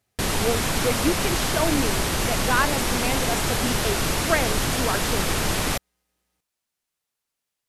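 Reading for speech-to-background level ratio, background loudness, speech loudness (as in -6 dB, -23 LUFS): -4.5 dB, -23.5 LUFS, -28.0 LUFS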